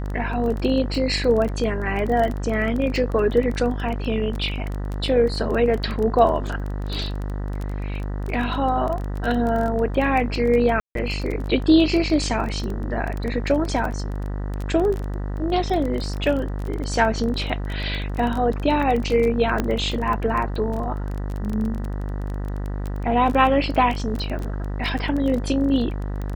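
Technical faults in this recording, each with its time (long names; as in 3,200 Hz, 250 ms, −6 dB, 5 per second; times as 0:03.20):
mains buzz 50 Hz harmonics 39 −27 dBFS
surface crackle 17 per second −25 dBFS
0:10.80–0:10.95: drop-out 152 ms
0:19.60: click −9 dBFS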